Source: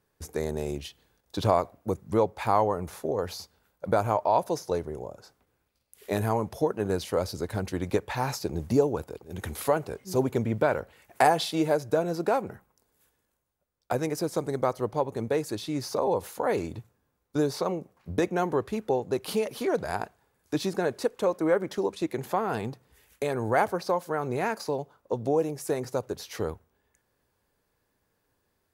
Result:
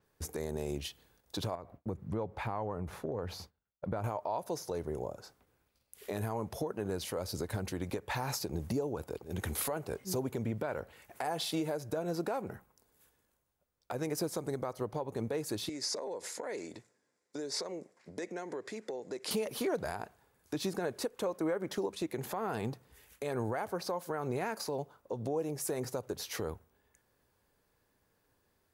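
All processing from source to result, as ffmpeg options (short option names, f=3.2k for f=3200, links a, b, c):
-filter_complex "[0:a]asettb=1/sr,asplit=3[a][b][c];[a]atrim=end=1.554[d];[b]atrim=start=1.55:end=4.04,asetpts=PTS-STARTPTS,afade=t=in:d=0.004:c=qsin,afade=t=out:st=2.486:d=0.004:c=qsin,agate=range=-33dB:threshold=-54dB:ratio=3:release=100:detection=peak,bass=f=250:g=6,treble=f=4k:g=-11,acompressor=threshold=-36dB:ratio=2.5:attack=3.2:release=140:knee=1:detection=peak[e];[c]atrim=start=4.036[f];[d][e]acrossfade=d=0.004:c1=hsin:c2=qsin[g];[g][f]acrossfade=d=0.004:c1=qsin:c2=hsin,asettb=1/sr,asplit=3[h][i][j];[h]atrim=end=15.694[k];[i]atrim=start=15.69:end=19.31,asetpts=PTS-STARTPTS,afade=t=in:d=0.004:c=qsin,afade=t=out:st=3.616:d=0.004:c=qsin,acompressor=threshold=-34dB:ratio=6:attack=3.2:release=140:knee=1:detection=peak,highpass=300,equalizer=f=800:t=q:w=4:g=-6,equalizer=f=1.2k:t=q:w=4:g=-7,equalizer=f=2k:t=q:w=4:g=6,equalizer=f=2.9k:t=q:w=4:g=-5,equalizer=f=5.1k:t=q:w=4:g=6,equalizer=f=7.3k:t=q:w=4:g=7,lowpass=f=9.4k:w=0.5412,lowpass=f=9.4k:w=1.3066[l];[j]atrim=start=19.306[m];[k][l]acrossfade=d=0.004:c1=hsin:c2=qsin[n];[n][m]acrossfade=d=0.004:c1=qsin:c2=hsin,acompressor=threshold=-30dB:ratio=3,alimiter=level_in=0.5dB:limit=-24dB:level=0:latency=1:release=93,volume=-0.5dB,adynamicequalizer=threshold=0.00282:dfrequency=7900:dqfactor=0.7:tfrequency=7900:tqfactor=0.7:attack=5:release=100:ratio=0.375:range=2:mode=boostabove:tftype=highshelf"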